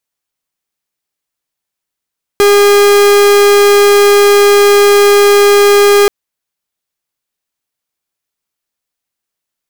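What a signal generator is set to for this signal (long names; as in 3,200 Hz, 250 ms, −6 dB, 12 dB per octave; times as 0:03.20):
pulse wave 407 Hz, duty 44% −6 dBFS 3.68 s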